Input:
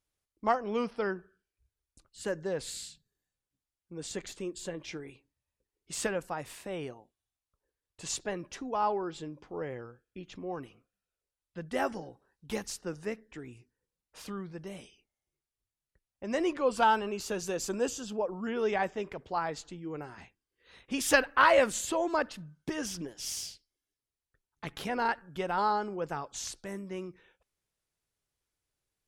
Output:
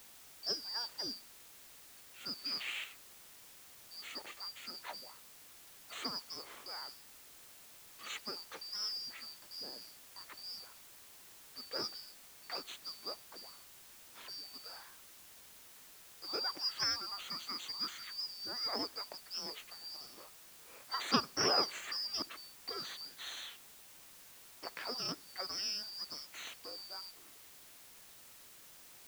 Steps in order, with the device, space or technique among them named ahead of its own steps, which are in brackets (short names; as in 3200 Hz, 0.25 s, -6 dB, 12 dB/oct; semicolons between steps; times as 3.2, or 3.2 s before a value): split-band scrambled radio (four-band scrambler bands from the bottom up 2341; BPF 330–2900 Hz; white noise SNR 13 dB); 2.37–2.84 dynamic EQ 2300 Hz, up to +8 dB, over -59 dBFS, Q 0.75